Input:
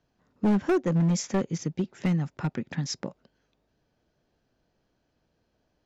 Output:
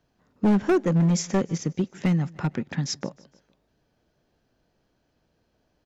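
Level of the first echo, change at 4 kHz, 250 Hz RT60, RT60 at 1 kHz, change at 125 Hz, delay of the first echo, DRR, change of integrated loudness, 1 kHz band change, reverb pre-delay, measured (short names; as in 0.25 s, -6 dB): -23.5 dB, +3.0 dB, none, none, +3.0 dB, 0.152 s, none, +3.0 dB, +3.0 dB, none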